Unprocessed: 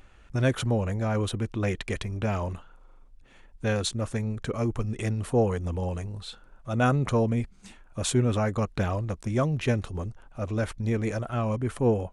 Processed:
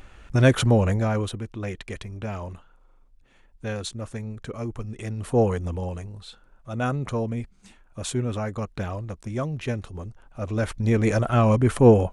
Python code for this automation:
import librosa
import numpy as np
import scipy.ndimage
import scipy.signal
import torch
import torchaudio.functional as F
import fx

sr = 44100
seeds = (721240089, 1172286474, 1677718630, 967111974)

y = fx.gain(x, sr, db=fx.line((0.91, 7.0), (1.44, -4.0), (5.07, -4.0), (5.42, 3.5), (6.16, -3.0), (10.03, -3.0), (11.24, 9.0)))